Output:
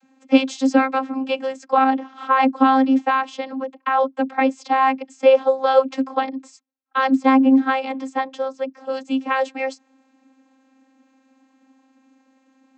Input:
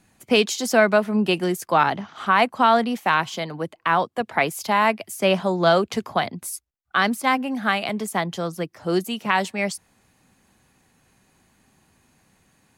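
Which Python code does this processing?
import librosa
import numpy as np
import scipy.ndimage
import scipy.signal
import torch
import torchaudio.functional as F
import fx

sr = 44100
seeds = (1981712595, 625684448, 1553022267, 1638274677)

y = fx.vocoder(x, sr, bands=32, carrier='saw', carrier_hz=265.0)
y = y * 10.0 ** (3.5 / 20.0)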